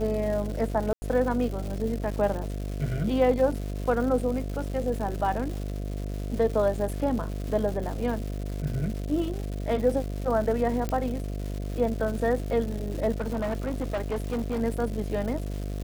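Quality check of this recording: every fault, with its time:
buzz 50 Hz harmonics 14 -32 dBFS
crackle 370/s -34 dBFS
0.93–1.02 gap 90 ms
10.89 pop -16 dBFS
13.2–14.62 clipped -24.5 dBFS

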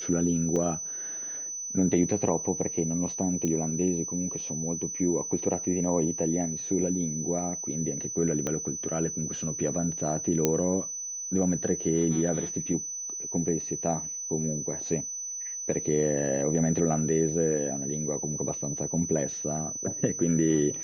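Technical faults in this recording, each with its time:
tone 6000 Hz -33 dBFS
0.56 gap 4 ms
3.45 pop -17 dBFS
8.47 pop -16 dBFS
10.45 pop -8 dBFS

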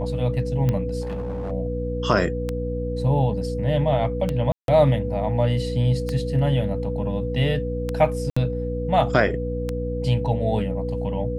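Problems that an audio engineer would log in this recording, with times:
hum 60 Hz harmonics 5 -28 dBFS
tick 33 1/3 rpm -12 dBFS
tone 490 Hz -28 dBFS
1.01–1.52 clipped -25 dBFS
4.52–4.68 gap 0.162 s
8.3–8.37 gap 65 ms

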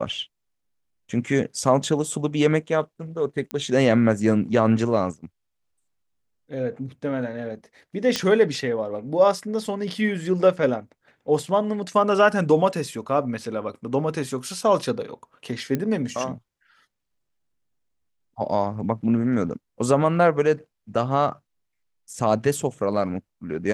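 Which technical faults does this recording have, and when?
3.51 pop -14 dBFS
8.16 pop -8 dBFS
15.75 pop -12 dBFS

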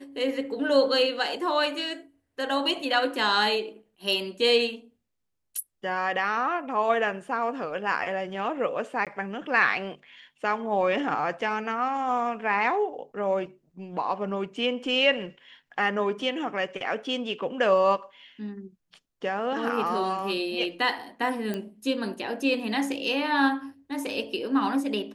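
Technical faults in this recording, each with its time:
9.05–9.07 gap 17 ms
21.54 pop -18 dBFS

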